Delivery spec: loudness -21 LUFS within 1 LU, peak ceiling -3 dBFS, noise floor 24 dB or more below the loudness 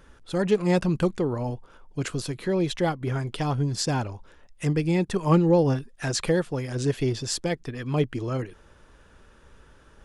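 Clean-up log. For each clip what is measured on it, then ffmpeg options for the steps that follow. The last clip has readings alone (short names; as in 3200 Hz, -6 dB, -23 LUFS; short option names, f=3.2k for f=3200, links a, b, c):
loudness -26.0 LUFS; peak -9.0 dBFS; loudness target -21.0 LUFS
-> -af "volume=5dB"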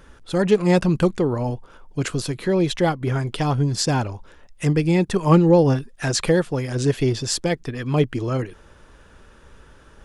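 loudness -21.0 LUFS; peak -4.0 dBFS; noise floor -50 dBFS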